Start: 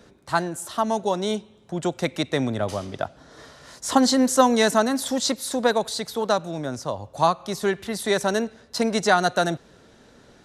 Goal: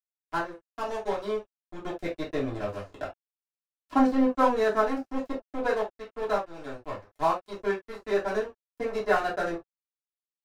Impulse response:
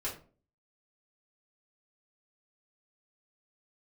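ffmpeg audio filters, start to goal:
-filter_complex "[0:a]acrossover=split=2600[a][b];[b]acompressor=threshold=-44dB:ratio=20[c];[a][c]amix=inputs=2:normalize=0,aeval=exprs='sgn(val(0))*max(abs(val(0))-0.0355,0)':c=same[d];[1:a]atrim=start_sample=2205,atrim=end_sample=3528[e];[d][e]afir=irnorm=-1:irlink=0,volume=-6dB"

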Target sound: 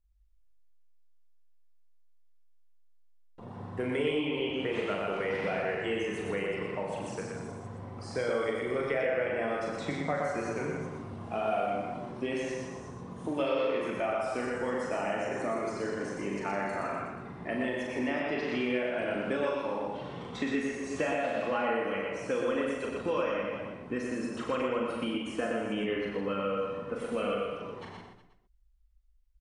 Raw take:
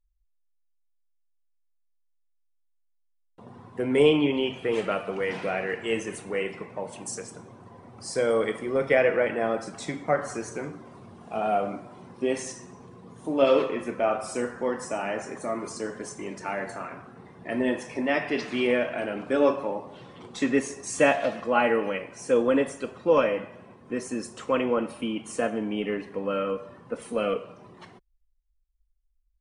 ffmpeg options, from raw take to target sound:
-filter_complex "[0:a]highshelf=f=7.4k:g=-10,asplit=2[a][b];[b]aecho=0:1:40|92|159.6|247.5|361.7:0.631|0.398|0.251|0.158|0.1[c];[a][c]amix=inputs=2:normalize=0,acrossover=split=1300|3800[d][e][f];[d]acompressor=threshold=-32dB:ratio=4[g];[e]acompressor=threshold=-40dB:ratio=4[h];[f]acompressor=threshold=-57dB:ratio=4[i];[g][h][i]amix=inputs=3:normalize=0,equalizer=f=67:t=o:w=0.77:g=8,asplit=2[j][k];[k]aecho=0:1:121:0.668[l];[j][l]amix=inputs=2:normalize=0"

